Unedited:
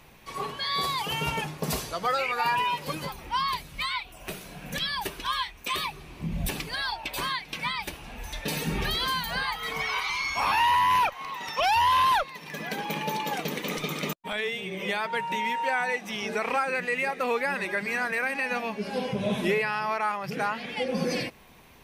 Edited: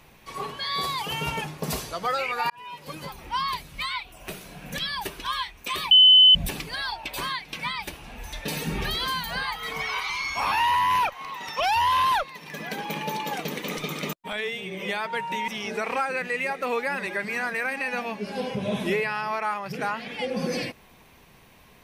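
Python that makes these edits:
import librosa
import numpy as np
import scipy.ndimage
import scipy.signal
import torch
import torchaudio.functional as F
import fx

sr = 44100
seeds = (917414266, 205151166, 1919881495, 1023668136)

y = fx.edit(x, sr, fx.fade_in_span(start_s=2.5, length_s=0.75),
    fx.bleep(start_s=5.91, length_s=0.44, hz=3030.0, db=-10.0),
    fx.cut(start_s=15.48, length_s=0.58), tone=tone)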